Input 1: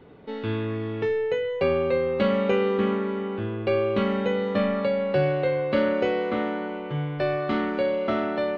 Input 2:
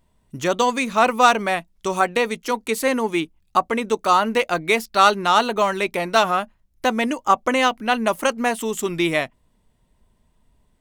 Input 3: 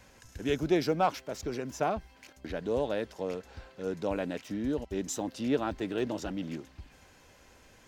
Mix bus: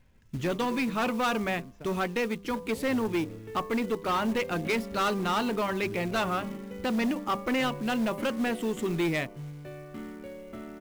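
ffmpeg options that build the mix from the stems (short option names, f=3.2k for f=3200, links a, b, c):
-filter_complex "[0:a]adelay=2450,volume=-11dB[a];[1:a]bandreject=f=99.26:t=h:w=4,bandreject=f=198.52:t=h:w=4,bandreject=f=297.78:t=h:w=4,bandreject=f=397.04:t=h:w=4,bandreject=f=496.3:t=h:w=4,bandreject=f=595.56:t=h:w=4,bandreject=f=694.82:t=h:w=4,bandreject=f=794.08:t=h:w=4,bandreject=f=893.34:t=h:w=4,bandreject=f=992.6:t=h:w=4,bandreject=f=1.09186k:t=h:w=4,bandreject=f=1.19112k:t=h:w=4,volume=1.5dB[b];[2:a]acrossover=split=290|3400[c][d][e];[c]acompressor=threshold=-38dB:ratio=4[f];[d]acompressor=threshold=-33dB:ratio=4[g];[e]acompressor=threshold=-51dB:ratio=4[h];[f][g][h]amix=inputs=3:normalize=0,volume=-5.5dB[i];[a][b][i]amix=inputs=3:normalize=0,firequalizer=gain_entry='entry(140,0);entry(670,-11);entry(2200,-6);entry(6200,-17)':delay=0.05:min_phase=1,asoftclip=type=tanh:threshold=-22dB,acrusher=bits=5:mode=log:mix=0:aa=0.000001"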